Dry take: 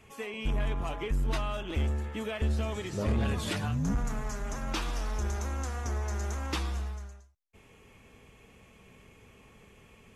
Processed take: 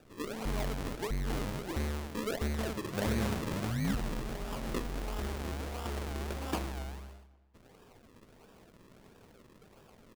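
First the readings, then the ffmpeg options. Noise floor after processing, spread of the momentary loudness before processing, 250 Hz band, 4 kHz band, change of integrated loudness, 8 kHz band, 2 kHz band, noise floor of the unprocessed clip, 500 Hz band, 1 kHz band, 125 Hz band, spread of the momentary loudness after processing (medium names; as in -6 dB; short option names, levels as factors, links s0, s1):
-60 dBFS, 6 LU, -0.5 dB, -3.0 dB, -3.0 dB, -3.0 dB, -2.5 dB, -58 dBFS, -1.0 dB, -2.0 dB, -5.0 dB, 6 LU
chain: -filter_complex "[0:a]acrusher=samples=41:mix=1:aa=0.000001:lfo=1:lforange=41:lforate=1.5,equalizer=f=60:t=o:w=1.9:g=-7.5,asplit=2[s0][s1];[s1]adelay=268,lowpass=f=3700:p=1,volume=0.0944,asplit=2[s2][s3];[s3]adelay=268,lowpass=f=3700:p=1,volume=0.34,asplit=2[s4][s5];[s5]adelay=268,lowpass=f=3700:p=1,volume=0.34[s6];[s0][s2][s4][s6]amix=inputs=4:normalize=0"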